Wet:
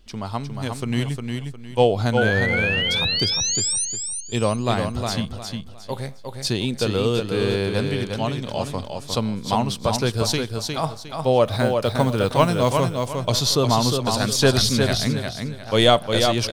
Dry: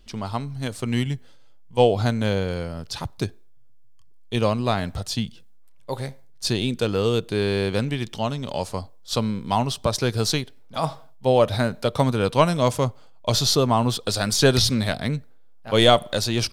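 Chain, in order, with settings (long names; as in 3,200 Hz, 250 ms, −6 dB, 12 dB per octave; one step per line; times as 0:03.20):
0:02.17–0:03.85: sound drawn into the spectrogram rise 1,400–9,500 Hz −24 dBFS
0:11.45–0:12.71: noise that follows the level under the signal 30 dB
repeating echo 357 ms, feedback 29%, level −5 dB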